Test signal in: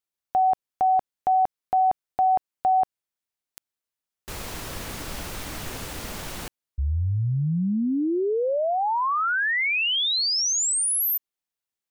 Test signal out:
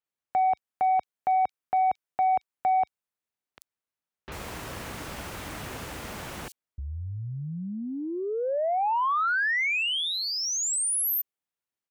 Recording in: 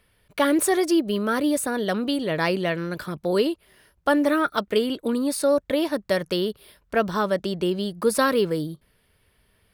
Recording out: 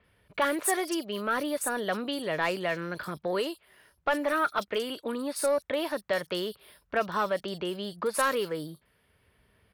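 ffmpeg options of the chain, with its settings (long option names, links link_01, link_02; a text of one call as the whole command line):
ffmpeg -i in.wav -filter_complex "[0:a]highpass=51,highshelf=frequency=5800:gain=-9.5,acrossover=split=580[link_01][link_02];[link_01]acompressor=threshold=-33dB:ratio=6:attack=4.4:release=682:knee=6:detection=rms[link_03];[link_03][link_02]amix=inputs=2:normalize=0,asoftclip=type=tanh:threshold=-17.5dB,acrossover=split=4300[link_04][link_05];[link_05]adelay=40[link_06];[link_04][link_06]amix=inputs=2:normalize=0,adynamicequalizer=threshold=0.00501:dfrequency=7400:dqfactor=0.7:tfrequency=7400:tqfactor=0.7:attack=5:release=100:ratio=0.375:range=3:mode=boostabove:tftype=highshelf" out.wav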